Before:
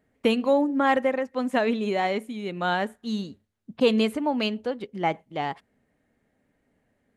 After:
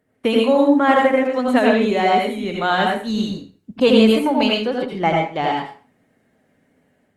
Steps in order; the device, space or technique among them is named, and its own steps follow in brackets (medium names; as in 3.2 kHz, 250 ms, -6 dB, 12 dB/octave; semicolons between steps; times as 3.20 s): far-field microphone of a smart speaker (reverberation RT60 0.40 s, pre-delay 75 ms, DRR -0.5 dB; high-pass 83 Hz 12 dB/octave; level rider gain up to 4 dB; trim +2 dB; Opus 32 kbps 48 kHz)